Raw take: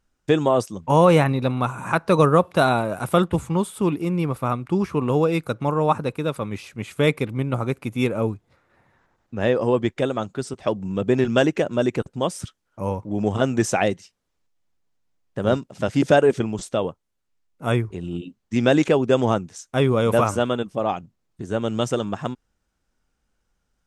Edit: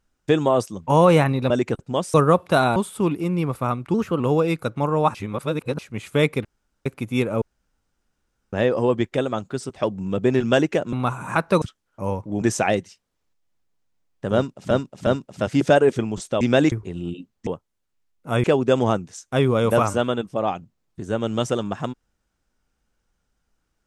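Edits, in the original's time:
0:01.50–0:02.19: swap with 0:11.77–0:12.41
0:02.81–0:03.57: remove
0:04.75–0:05.04: play speed 113%
0:05.99–0:06.63: reverse
0:07.29–0:07.70: fill with room tone
0:08.26–0:09.37: fill with room tone
0:13.21–0:13.55: remove
0:15.48–0:15.84: repeat, 3 plays
0:16.82–0:17.79: swap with 0:18.54–0:18.85

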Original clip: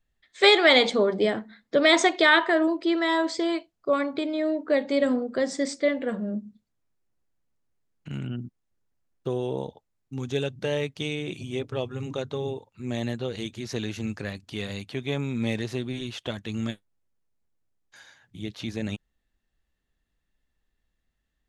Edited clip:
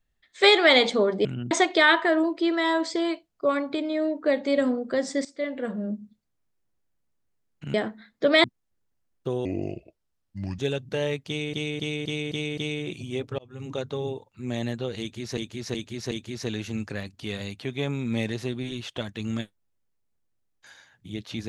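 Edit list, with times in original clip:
0:01.25–0:01.95: swap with 0:08.18–0:08.44
0:05.69–0:06.37: fade in equal-power, from −17 dB
0:09.45–0:10.29: play speed 74%
0:10.98–0:11.24: repeat, 6 plays
0:11.79–0:12.16: fade in
0:13.41–0:13.78: repeat, 4 plays

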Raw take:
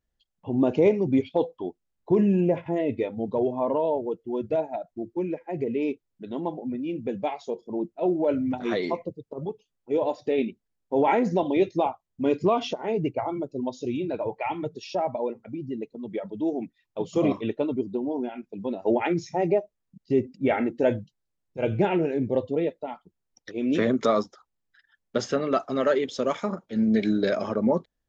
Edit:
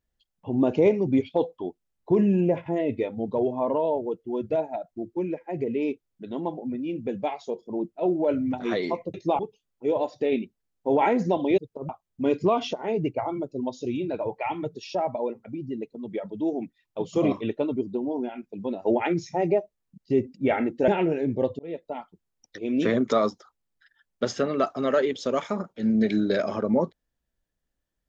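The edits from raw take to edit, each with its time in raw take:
0:09.14–0:09.45: swap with 0:11.64–0:11.89
0:20.88–0:21.81: remove
0:22.52–0:22.83: fade in

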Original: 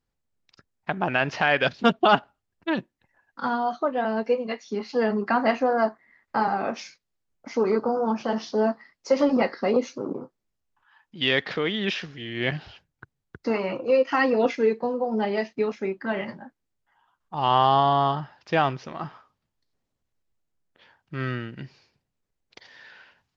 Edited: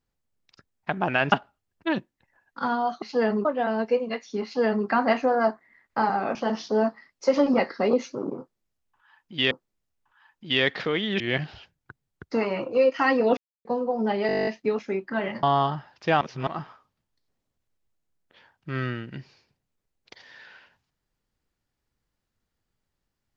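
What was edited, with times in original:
0:01.32–0:02.13: remove
0:04.82–0:05.25: duplicate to 0:03.83
0:06.73–0:08.18: remove
0:10.22–0:11.34: repeat, 2 plays
0:11.91–0:12.33: remove
0:14.50–0:14.78: silence
0:15.40: stutter 0.02 s, 11 plays
0:16.36–0:17.88: remove
0:18.66–0:18.92: reverse

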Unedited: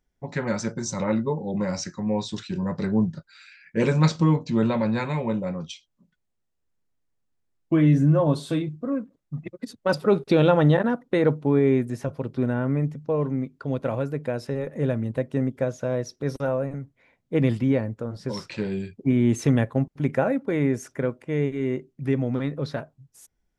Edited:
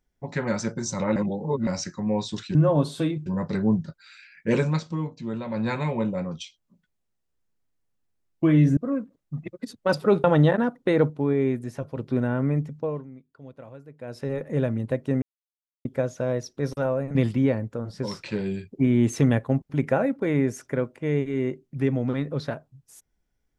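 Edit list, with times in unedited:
0:01.16–0:01.67: reverse
0:03.85–0:05.00: duck −9.5 dB, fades 0.24 s
0:08.06–0:08.77: move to 0:02.55
0:10.24–0:10.50: remove
0:11.36–0:12.22: clip gain −3.5 dB
0:12.99–0:14.58: duck −17 dB, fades 0.34 s
0:15.48: splice in silence 0.63 s
0:16.78–0:17.41: remove

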